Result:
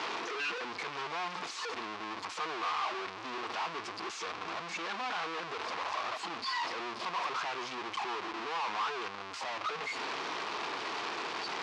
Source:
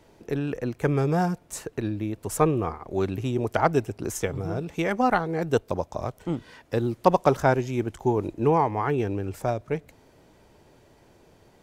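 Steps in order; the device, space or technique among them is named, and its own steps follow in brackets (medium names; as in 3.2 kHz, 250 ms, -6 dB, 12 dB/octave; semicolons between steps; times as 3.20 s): spectral noise reduction 29 dB; dynamic bell 1.2 kHz, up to +5 dB, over -35 dBFS, Q 0.94; home computer beeper (one-bit comparator; cabinet simulation 500–5000 Hz, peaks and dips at 570 Hz -9 dB, 1.1 kHz +7 dB, 2.5 kHz +3 dB); trim -8.5 dB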